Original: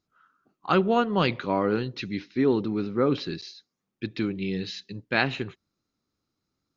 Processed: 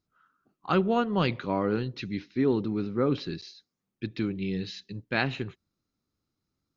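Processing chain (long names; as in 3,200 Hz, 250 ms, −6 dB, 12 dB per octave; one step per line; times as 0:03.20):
low-shelf EQ 180 Hz +6.5 dB
level −4 dB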